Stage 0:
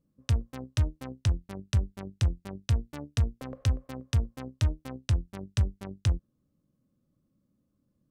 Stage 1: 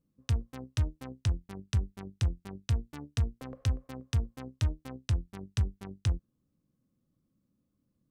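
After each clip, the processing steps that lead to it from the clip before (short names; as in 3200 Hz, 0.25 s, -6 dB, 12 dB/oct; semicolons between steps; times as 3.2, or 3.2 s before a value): notch 580 Hz, Q 12; gain -3 dB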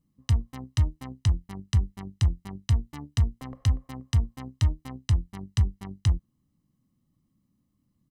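comb 1 ms, depth 55%; gain +2.5 dB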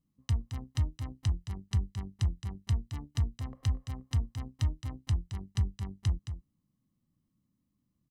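echo 0.219 s -9.5 dB; gain -6.5 dB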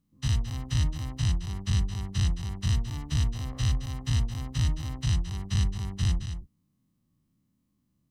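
spectral dilation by 0.12 s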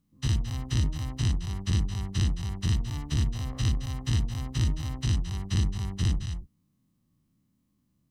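core saturation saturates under 160 Hz; gain +1.5 dB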